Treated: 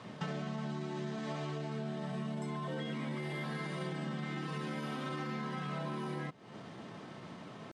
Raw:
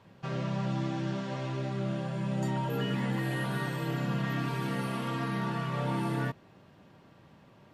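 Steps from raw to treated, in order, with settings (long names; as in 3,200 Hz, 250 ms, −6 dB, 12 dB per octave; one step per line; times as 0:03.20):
pitch shifter +2 semitones
high-pass filter 120 Hz
downward compressor 16 to 1, threshold −45 dBFS, peak gain reduction 18 dB
Butterworth low-pass 10,000 Hz 36 dB per octave
level +9.5 dB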